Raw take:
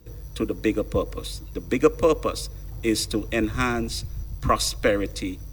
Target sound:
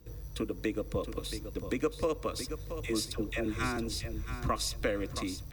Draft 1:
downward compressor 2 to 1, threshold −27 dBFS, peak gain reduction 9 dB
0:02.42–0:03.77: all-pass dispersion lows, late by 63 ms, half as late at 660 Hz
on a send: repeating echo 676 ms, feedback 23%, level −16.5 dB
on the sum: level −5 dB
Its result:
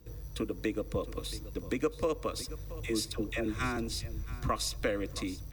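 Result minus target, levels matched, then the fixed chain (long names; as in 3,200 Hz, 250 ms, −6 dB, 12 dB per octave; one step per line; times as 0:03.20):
echo-to-direct −6.5 dB
downward compressor 2 to 1, threshold −27 dBFS, peak gain reduction 9 dB
0:02.42–0:03.77: all-pass dispersion lows, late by 63 ms, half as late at 660 Hz
on a send: repeating echo 676 ms, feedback 23%, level −10 dB
on the sum: level −5 dB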